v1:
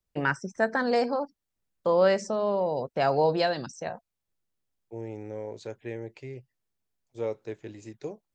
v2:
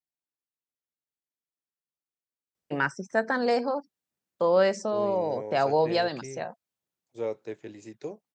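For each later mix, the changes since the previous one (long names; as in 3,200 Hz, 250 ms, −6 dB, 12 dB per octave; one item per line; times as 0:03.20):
first voice: entry +2.55 s
master: add high-pass filter 150 Hz 12 dB per octave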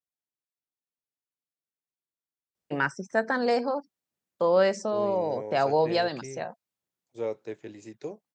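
nothing changed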